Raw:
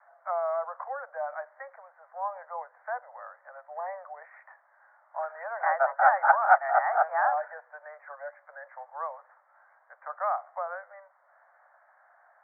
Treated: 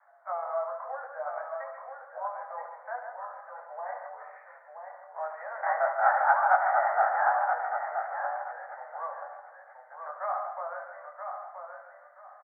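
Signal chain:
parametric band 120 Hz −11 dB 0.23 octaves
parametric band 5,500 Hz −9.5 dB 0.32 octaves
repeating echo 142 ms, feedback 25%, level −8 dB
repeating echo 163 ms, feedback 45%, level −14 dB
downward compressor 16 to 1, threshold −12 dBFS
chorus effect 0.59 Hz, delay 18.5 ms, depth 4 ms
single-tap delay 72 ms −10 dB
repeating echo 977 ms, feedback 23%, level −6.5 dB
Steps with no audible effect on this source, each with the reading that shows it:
parametric band 120 Hz: nothing at its input below 480 Hz
parametric band 5,500 Hz: nothing at its input above 2,000 Hz

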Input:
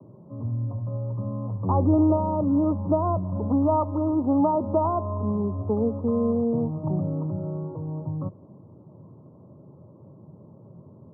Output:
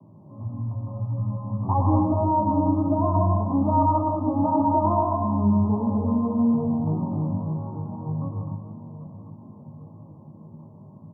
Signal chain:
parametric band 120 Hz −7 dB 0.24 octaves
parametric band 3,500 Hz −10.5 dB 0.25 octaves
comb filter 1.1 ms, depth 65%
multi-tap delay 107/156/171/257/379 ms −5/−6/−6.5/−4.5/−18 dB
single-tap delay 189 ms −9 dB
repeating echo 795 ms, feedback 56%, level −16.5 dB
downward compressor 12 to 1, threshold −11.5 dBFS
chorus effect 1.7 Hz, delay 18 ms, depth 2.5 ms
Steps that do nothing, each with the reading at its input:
parametric band 3,500 Hz: nothing at its input above 1,300 Hz

